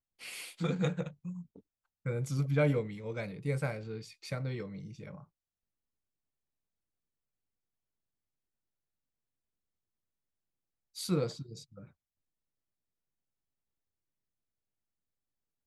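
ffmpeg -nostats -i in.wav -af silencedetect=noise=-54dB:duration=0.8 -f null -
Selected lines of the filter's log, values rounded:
silence_start: 5.24
silence_end: 10.95 | silence_duration: 5.71
silence_start: 11.91
silence_end: 15.66 | silence_duration: 3.76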